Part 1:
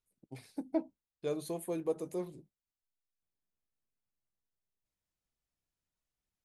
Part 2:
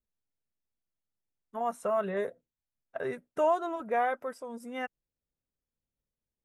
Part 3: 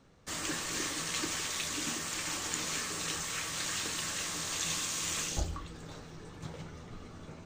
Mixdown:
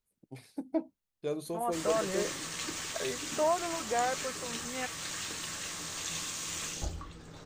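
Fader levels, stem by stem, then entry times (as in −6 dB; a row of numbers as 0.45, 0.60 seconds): +1.0, −2.5, −3.0 decibels; 0.00, 0.00, 1.45 seconds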